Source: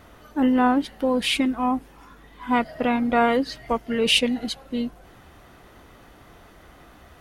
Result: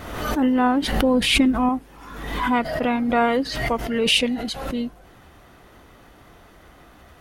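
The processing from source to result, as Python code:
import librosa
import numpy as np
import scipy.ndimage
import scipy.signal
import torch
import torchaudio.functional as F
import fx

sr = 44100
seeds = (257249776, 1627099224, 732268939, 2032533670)

y = fx.low_shelf(x, sr, hz=290.0, db=8.5, at=(0.92, 1.69))
y = fx.pre_swell(y, sr, db_per_s=47.0)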